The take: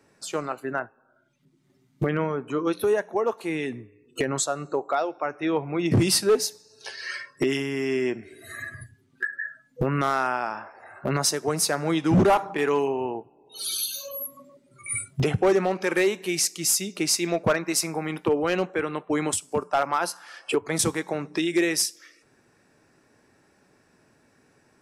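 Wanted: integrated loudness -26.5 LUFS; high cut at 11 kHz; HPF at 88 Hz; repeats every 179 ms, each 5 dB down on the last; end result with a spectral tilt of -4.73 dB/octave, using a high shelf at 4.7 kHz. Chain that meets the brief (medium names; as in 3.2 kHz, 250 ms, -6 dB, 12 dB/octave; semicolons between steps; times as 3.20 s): high-pass 88 Hz; low-pass 11 kHz; treble shelf 4.7 kHz -7.5 dB; feedback delay 179 ms, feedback 56%, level -5 dB; trim -1 dB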